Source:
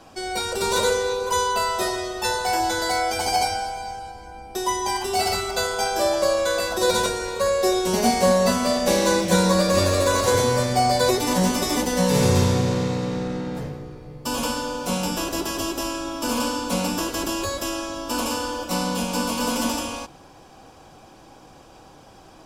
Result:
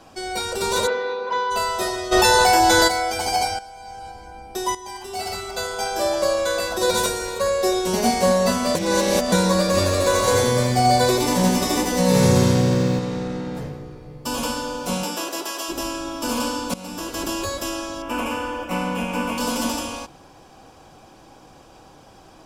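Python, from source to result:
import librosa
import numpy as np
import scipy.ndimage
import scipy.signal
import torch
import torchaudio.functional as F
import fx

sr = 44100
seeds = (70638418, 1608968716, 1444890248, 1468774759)

y = fx.cabinet(x, sr, low_hz=250.0, low_slope=12, high_hz=3600.0, hz=(280.0, 400.0, 1700.0, 3000.0), db=(7, -6, 3, -6), at=(0.86, 1.5), fade=0.02)
y = fx.env_flatten(y, sr, amount_pct=100, at=(2.11, 2.87), fade=0.02)
y = fx.high_shelf(y, sr, hz=9800.0, db=12.0, at=(6.97, 7.39))
y = fx.echo_crushed(y, sr, ms=81, feedback_pct=35, bits=8, wet_db=-5.0, at=(9.96, 12.99))
y = fx.highpass(y, sr, hz=fx.line((15.03, 250.0), (15.68, 620.0)), slope=12, at=(15.03, 15.68), fade=0.02)
y = fx.high_shelf_res(y, sr, hz=3200.0, db=-8.5, q=3.0, at=(18.02, 19.38))
y = fx.edit(y, sr, fx.fade_in_from(start_s=3.59, length_s=0.48, curve='qua', floor_db=-12.0),
    fx.fade_in_from(start_s=4.75, length_s=1.46, floor_db=-13.0),
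    fx.reverse_span(start_s=8.75, length_s=0.57),
    fx.fade_in_from(start_s=16.74, length_s=0.53, floor_db=-18.0), tone=tone)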